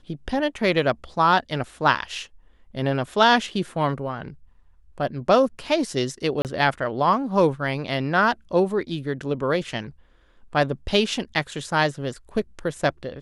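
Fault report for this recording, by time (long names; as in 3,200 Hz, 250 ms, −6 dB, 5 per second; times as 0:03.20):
0:06.42–0:06.45: drop-out 28 ms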